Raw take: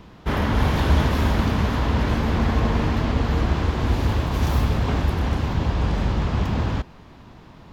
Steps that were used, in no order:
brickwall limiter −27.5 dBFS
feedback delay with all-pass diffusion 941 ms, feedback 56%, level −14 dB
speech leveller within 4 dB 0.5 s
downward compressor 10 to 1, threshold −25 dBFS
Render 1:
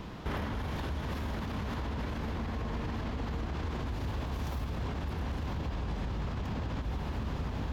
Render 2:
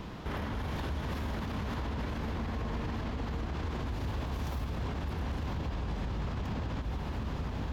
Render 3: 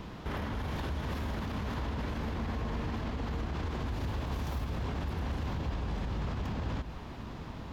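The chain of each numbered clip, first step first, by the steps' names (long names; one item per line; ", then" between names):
feedback delay with all-pass diffusion, then downward compressor, then brickwall limiter, then speech leveller
speech leveller, then feedback delay with all-pass diffusion, then downward compressor, then brickwall limiter
downward compressor, then speech leveller, then brickwall limiter, then feedback delay with all-pass diffusion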